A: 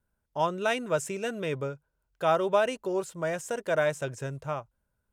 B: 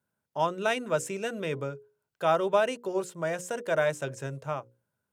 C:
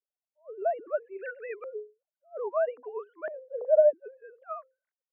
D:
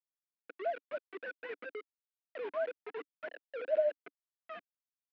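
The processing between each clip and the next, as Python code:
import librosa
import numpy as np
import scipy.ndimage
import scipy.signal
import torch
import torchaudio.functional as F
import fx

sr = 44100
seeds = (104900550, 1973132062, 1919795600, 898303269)

y1 = scipy.signal.sosfilt(scipy.signal.butter(4, 110.0, 'highpass', fs=sr, output='sos'), x)
y1 = fx.hum_notches(y1, sr, base_hz=60, count=9)
y2 = fx.sine_speech(y1, sr)
y2 = fx.filter_lfo_lowpass(y2, sr, shape='saw_up', hz=0.61, low_hz=400.0, high_hz=2100.0, q=3.6)
y2 = fx.attack_slew(y2, sr, db_per_s=410.0)
y2 = y2 * librosa.db_to_amplitude(-6.0)
y3 = fx.quant_dither(y2, sr, seeds[0], bits=6, dither='none')
y3 = fx.cabinet(y3, sr, low_hz=260.0, low_slope=24, high_hz=2200.0, hz=(290.0, 410.0, 590.0, 840.0, 1200.0, 1900.0), db=(4, -6, -8, -7, -9, -3))
y3 = y3 * librosa.db_to_amplitude(-1.0)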